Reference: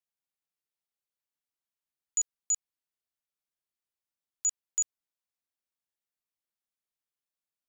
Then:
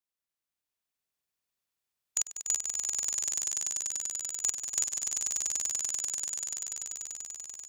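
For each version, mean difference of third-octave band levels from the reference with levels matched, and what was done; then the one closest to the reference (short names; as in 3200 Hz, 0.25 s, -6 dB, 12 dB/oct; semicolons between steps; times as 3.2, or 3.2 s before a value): 11.0 dB: spectral limiter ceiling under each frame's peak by 23 dB; on a send: swelling echo 97 ms, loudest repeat 8, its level -5.5 dB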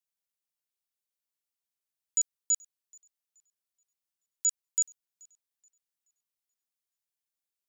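1.5 dB: high shelf 3200 Hz +8.5 dB; on a send: tape echo 0.428 s, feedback 45%, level -21 dB, low-pass 5900 Hz; on the sum: gain -5.5 dB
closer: second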